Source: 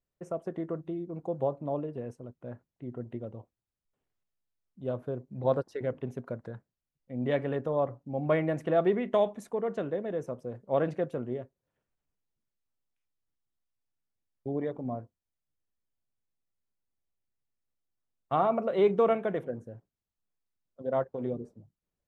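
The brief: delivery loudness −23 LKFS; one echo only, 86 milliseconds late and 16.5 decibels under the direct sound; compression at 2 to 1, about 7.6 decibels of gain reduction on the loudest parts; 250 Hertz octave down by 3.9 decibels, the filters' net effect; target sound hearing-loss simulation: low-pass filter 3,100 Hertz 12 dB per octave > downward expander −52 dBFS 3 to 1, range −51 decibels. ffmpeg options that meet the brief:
ffmpeg -i in.wav -af "equalizer=frequency=250:width_type=o:gain=-5.5,acompressor=threshold=-35dB:ratio=2,lowpass=3100,aecho=1:1:86:0.15,agate=range=-51dB:threshold=-52dB:ratio=3,volume=15.5dB" out.wav

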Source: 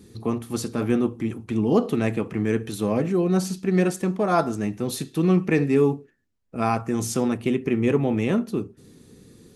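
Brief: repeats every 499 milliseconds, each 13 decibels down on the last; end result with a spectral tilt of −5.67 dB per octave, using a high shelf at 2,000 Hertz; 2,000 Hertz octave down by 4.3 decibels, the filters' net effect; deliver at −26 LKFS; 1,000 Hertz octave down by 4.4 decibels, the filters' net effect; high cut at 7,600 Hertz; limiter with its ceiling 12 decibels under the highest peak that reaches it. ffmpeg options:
ffmpeg -i in.wav -af "lowpass=7600,equalizer=frequency=1000:width_type=o:gain=-6,highshelf=frequency=2000:gain=7,equalizer=frequency=2000:width_type=o:gain=-8.5,alimiter=limit=-20dB:level=0:latency=1,aecho=1:1:499|998|1497:0.224|0.0493|0.0108,volume=3.5dB" out.wav

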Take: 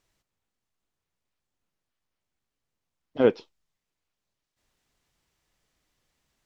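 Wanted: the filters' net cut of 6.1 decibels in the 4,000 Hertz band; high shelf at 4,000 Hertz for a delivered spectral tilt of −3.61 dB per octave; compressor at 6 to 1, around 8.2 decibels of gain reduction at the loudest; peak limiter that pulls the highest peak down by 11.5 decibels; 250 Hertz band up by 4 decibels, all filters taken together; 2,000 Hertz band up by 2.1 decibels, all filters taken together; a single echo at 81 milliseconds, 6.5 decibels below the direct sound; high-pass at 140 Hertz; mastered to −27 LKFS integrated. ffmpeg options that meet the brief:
ffmpeg -i in.wav -af "highpass=140,equalizer=frequency=250:width_type=o:gain=5,equalizer=frequency=2000:width_type=o:gain=6,highshelf=frequency=4000:gain=-5,equalizer=frequency=4000:width_type=o:gain=-9,acompressor=threshold=-20dB:ratio=6,alimiter=limit=-23dB:level=0:latency=1,aecho=1:1:81:0.473,volume=10dB" out.wav

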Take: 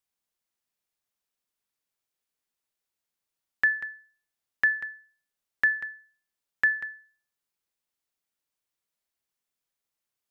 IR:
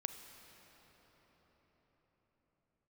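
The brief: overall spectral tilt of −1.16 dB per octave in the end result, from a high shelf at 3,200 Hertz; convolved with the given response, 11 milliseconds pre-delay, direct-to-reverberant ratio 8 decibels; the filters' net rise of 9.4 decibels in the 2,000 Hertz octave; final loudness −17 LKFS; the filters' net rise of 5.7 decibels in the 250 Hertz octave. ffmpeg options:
-filter_complex "[0:a]equalizer=frequency=250:width_type=o:gain=7,equalizer=frequency=2000:width_type=o:gain=8.5,highshelf=frequency=3200:gain=9,asplit=2[link_01][link_02];[1:a]atrim=start_sample=2205,adelay=11[link_03];[link_02][link_03]afir=irnorm=-1:irlink=0,volume=-6.5dB[link_04];[link_01][link_04]amix=inputs=2:normalize=0,volume=-1dB"

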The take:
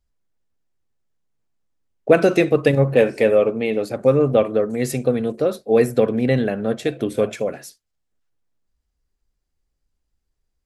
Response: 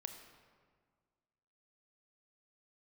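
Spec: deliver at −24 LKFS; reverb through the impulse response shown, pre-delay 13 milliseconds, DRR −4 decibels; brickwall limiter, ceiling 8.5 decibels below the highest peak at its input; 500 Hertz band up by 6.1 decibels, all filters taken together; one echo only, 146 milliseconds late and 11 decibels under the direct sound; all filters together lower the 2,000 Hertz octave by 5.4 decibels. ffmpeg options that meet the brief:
-filter_complex "[0:a]equalizer=frequency=500:width_type=o:gain=7,equalizer=frequency=2000:width_type=o:gain=-7.5,alimiter=limit=-5dB:level=0:latency=1,aecho=1:1:146:0.282,asplit=2[link_01][link_02];[1:a]atrim=start_sample=2205,adelay=13[link_03];[link_02][link_03]afir=irnorm=-1:irlink=0,volume=7.5dB[link_04];[link_01][link_04]amix=inputs=2:normalize=0,volume=-14dB"

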